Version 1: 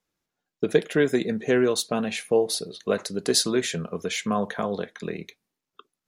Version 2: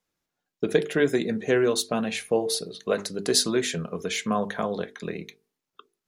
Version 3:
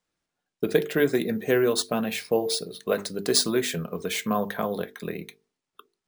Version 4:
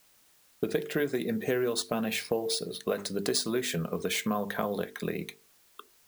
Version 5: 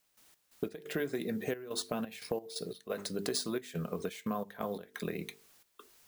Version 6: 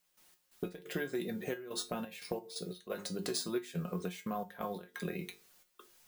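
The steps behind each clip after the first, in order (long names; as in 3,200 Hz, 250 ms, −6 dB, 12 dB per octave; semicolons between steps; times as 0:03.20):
mains-hum notches 50/100/150/200/250/300/350/400/450 Hz
decimation without filtering 3×
downward compressor 4 to 1, threshold −29 dBFS, peak gain reduction 12 dB; background noise white −65 dBFS; level +2 dB
downward compressor 1.5 to 1, threshold −40 dBFS, peak gain reduction 6.5 dB; gate pattern ".x.x.xxxx.xx" 88 BPM −12 dB
tuned comb filter 180 Hz, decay 0.2 s, harmonics all, mix 80%; level +6.5 dB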